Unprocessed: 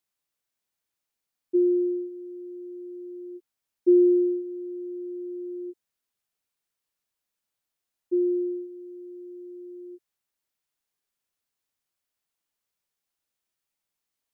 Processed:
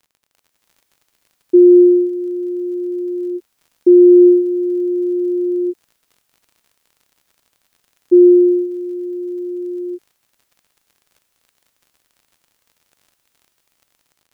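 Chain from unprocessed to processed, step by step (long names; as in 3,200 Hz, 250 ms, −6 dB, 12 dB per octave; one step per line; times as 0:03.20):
brickwall limiter −20 dBFS, peak gain reduction 8.5 dB
automatic gain control gain up to 12 dB
surface crackle 60 per second −46 dBFS
level +5 dB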